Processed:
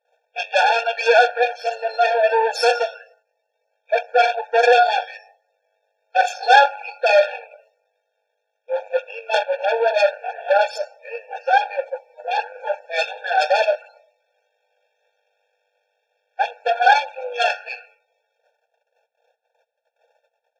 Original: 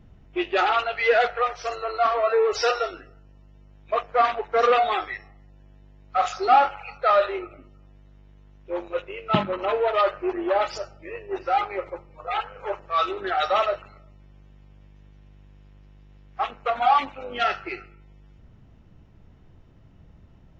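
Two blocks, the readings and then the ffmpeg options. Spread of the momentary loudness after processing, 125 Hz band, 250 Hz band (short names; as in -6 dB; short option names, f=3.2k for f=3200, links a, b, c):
15 LU, under -35 dB, under -25 dB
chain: -af "aeval=exprs='0.473*(cos(1*acos(clip(val(0)/0.473,-1,1)))-cos(1*PI/2))+0.237*(cos(4*acos(clip(val(0)/0.473,-1,1)))-cos(4*PI/2))+0.0531*(cos(5*acos(clip(val(0)/0.473,-1,1)))-cos(5*PI/2))+0.00376*(cos(8*acos(clip(val(0)/0.473,-1,1)))-cos(8*PI/2))':c=same,agate=range=-20dB:threshold=-45dB:ratio=16:detection=peak,afftfilt=real='re*eq(mod(floor(b*sr/1024/460),2),1)':imag='im*eq(mod(floor(b*sr/1024/460),2),1)':win_size=1024:overlap=0.75,volume=3.5dB"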